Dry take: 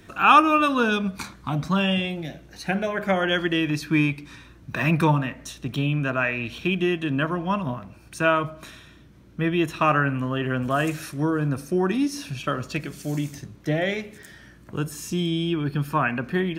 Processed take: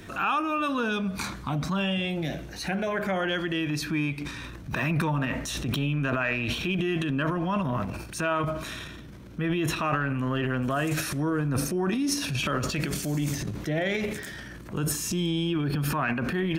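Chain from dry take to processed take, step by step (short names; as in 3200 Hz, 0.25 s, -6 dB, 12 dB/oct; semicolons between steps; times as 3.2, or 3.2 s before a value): compressor 6:1, threshold -30 dBFS, peak gain reduction 18.5 dB; transient shaper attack -5 dB, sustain +4 dB, from 4.2 s sustain +11 dB; gain +5.5 dB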